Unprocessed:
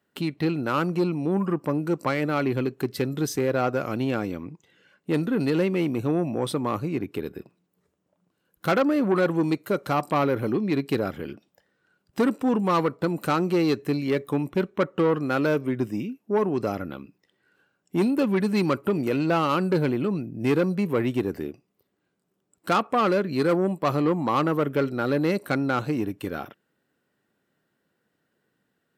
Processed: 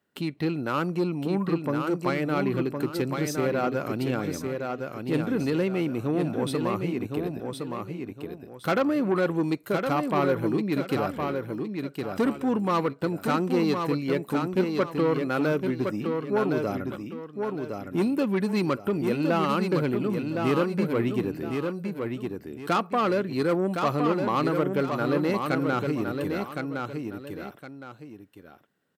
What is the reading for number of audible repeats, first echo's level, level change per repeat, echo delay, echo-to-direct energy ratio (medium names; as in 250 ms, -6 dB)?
2, -5.0 dB, -10.0 dB, 1063 ms, -4.5 dB